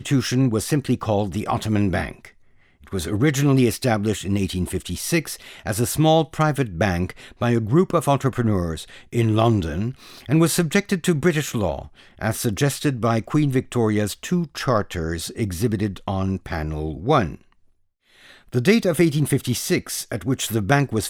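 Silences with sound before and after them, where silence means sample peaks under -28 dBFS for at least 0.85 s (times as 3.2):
17.35–18.53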